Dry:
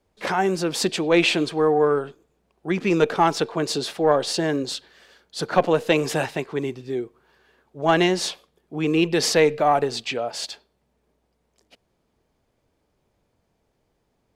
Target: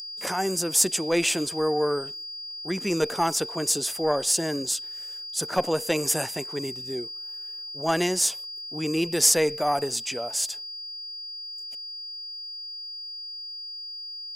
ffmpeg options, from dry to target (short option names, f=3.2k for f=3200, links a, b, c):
-af "aeval=exprs='val(0)+0.0251*sin(2*PI*4800*n/s)':c=same,aexciter=amount=8.8:drive=4.2:freq=6k,volume=-6dB"